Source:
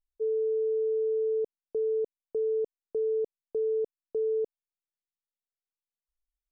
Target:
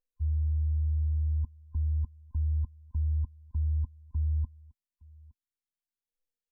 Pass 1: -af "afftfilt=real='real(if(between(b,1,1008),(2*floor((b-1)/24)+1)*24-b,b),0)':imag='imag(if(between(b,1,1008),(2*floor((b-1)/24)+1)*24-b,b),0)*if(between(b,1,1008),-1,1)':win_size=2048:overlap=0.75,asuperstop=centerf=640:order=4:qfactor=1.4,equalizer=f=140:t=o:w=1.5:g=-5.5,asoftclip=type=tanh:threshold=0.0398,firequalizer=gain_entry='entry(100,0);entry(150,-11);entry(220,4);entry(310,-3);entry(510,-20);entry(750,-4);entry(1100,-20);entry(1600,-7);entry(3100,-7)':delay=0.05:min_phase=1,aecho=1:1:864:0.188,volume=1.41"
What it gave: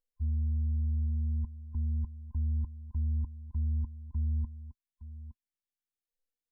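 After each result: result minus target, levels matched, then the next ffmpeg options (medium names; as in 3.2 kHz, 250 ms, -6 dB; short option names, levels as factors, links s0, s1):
saturation: distortion +18 dB; echo-to-direct +10.5 dB
-af "afftfilt=real='real(if(between(b,1,1008),(2*floor((b-1)/24)+1)*24-b,b),0)':imag='imag(if(between(b,1,1008),(2*floor((b-1)/24)+1)*24-b,b),0)*if(between(b,1,1008),-1,1)':win_size=2048:overlap=0.75,asuperstop=centerf=640:order=4:qfactor=1.4,equalizer=f=140:t=o:w=1.5:g=-5.5,asoftclip=type=tanh:threshold=0.126,firequalizer=gain_entry='entry(100,0);entry(150,-11);entry(220,4);entry(310,-3);entry(510,-20);entry(750,-4);entry(1100,-20);entry(1600,-7);entry(3100,-7)':delay=0.05:min_phase=1,aecho=1:1:864:0.188,volume=1.41"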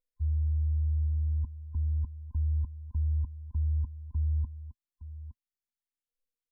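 echo-to-direct +10.5 dB
-af "afftfilt=real='real(if(between(b,1,1008),(2*floor((b-1)/24)+1)*24-b,b),0)':imag='imag(if(between(b,1,1008),(2*floor((b-1)/24)+1)*24-b,b),0)*if(between(b,1,1008),-1,1)':win_size=2048:overlap=0.75,asuperstop=centerf=640:order=4:qfactor=1.4,equalizer=f=140:t=o:w=1.5:g=-5.5,asoftclip=type=tanh:threshold=0.126,firequalizer=gain_entry='entry(100,0);entry(150,-11);entry(220,4);entry(310,-3);entry(510,-20);entry(750,-4);entry(1100,-20);entry(1600,-7);entry(3100,-7)':delay=0.05:min_phase=1,aecho=1:1:864:0.0562,volume=1.41"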